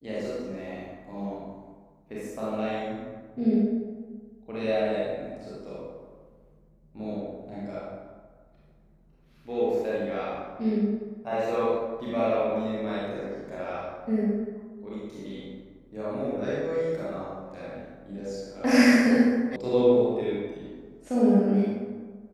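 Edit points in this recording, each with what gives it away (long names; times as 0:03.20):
0:19.56: cut off before it has died away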